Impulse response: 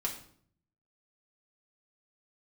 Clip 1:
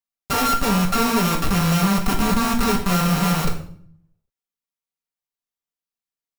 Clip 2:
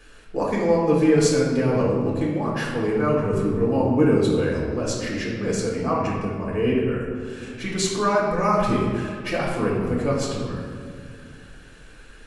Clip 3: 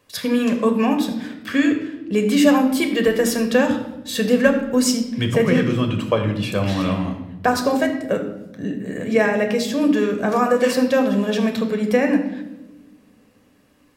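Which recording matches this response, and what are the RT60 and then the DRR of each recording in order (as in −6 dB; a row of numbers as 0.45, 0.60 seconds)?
1; 0.60 s, 2.1 s, non-exponential decay; −2.0, −4.5, 4.5 decibels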